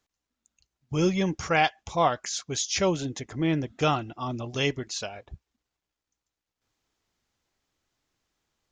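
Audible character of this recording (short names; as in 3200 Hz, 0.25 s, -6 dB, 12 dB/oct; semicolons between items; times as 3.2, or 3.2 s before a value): noise floor -88 dBFS; spectral tilt -4.5 dB/oct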